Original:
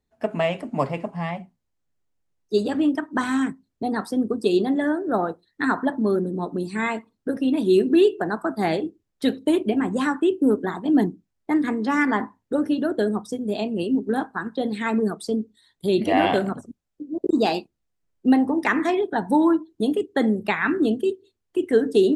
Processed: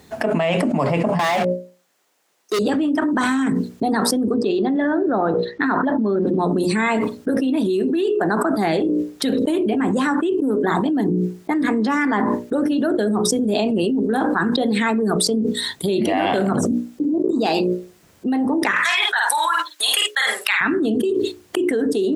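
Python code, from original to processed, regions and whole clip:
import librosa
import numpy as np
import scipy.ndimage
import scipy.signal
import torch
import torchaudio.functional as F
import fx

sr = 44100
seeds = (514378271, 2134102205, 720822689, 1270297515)

y = fx.chain(x, sr, fx.highpass(hz=490.0, slope=12),
    fx.leveller(passes=5), at=(1.19, 2.59))
y = fx.chain(y, sr, fx.quant_float(bits=6),
    fx.air_absorb(metres=190.0), at=(4.34, 6.39))
y = fx.chain(y, sr, fx.highpass(hz=1300.0, slope=24),
    fx.doubler(ms=50.0, db=-6), at=(18.71, 20.61))
y = scipy.signal.sosfilt(scipy.signal.butter(2, 99.0, 'highpass', fs=sr, output='sos'), y)
y = fx.hum_notches(y, sr, base_hz=60, count=10)
y = fx.env_flatten(y, sr, amount_pct=100)
y = y * 10.0 ** (-6.0 / 20.0)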